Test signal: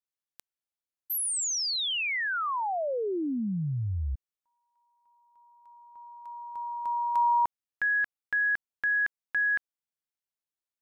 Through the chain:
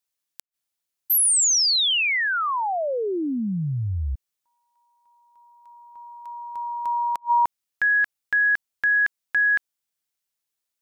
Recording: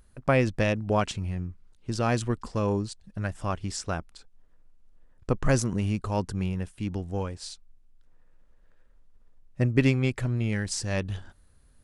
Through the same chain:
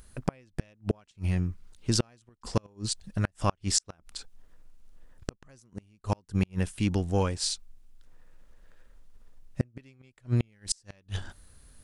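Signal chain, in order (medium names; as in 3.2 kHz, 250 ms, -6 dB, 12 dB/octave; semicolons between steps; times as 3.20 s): treble shelf 2.5 kHz +7 dB; inverted gate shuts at -17 dBFS, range -38 dB; trim +4.5 dB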